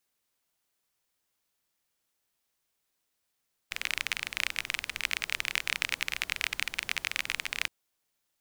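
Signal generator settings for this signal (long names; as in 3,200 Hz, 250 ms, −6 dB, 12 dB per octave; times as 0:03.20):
rain-like ticks over hiss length 3.97 s, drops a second 27, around 2,300 Hz, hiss −17.5 dB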